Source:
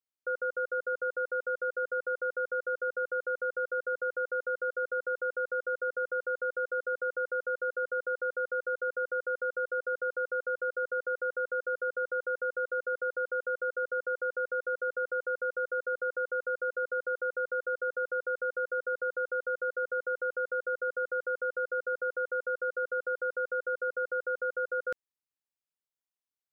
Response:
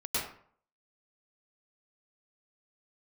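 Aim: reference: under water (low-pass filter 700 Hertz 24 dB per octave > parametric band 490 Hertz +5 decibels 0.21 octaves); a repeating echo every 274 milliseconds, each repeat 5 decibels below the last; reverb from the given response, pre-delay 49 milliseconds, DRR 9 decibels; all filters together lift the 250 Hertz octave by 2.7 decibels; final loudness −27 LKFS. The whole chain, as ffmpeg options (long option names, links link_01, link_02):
-filter_complex "[0:a]equalizer=frequency=250:width_type=o:gain=4,aecho=1:1:274|548|822|1096|1370|1644|1918:0.562|0.315|0.176|0.0988|0.0553|0.031|0.0173,asplit=2[link_01][link_02];[1:a]atrim=start_sample=2205,adelay=49[link_03];[link_02][link_03]afir=irnorm=-1:irlink=0,volume=-15.5dB[link_04];[link_01][link_04]amix=inputs=2:normalize=0,lowpass=frequency=700:width=0.5412,lowpass=frequency=700:width=1.3066,equalizer=frequency=490:width_type=o:width=0.21:gain=5,volume=8dB"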